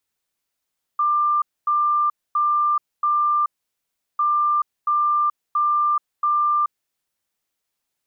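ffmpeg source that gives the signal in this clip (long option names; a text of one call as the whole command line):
ffmpeg -f lavfi -i "aevalsrc='0.158*sin(2*PI*1190*t)*clip(min(mod(mod(t,3.2),0.68),0.43-mod(mod(t,3.2),0.68))/0.005,0,1)*lt(mod(t,3.2),2.72)':duration=6.4:sample_rate=44100" out.wav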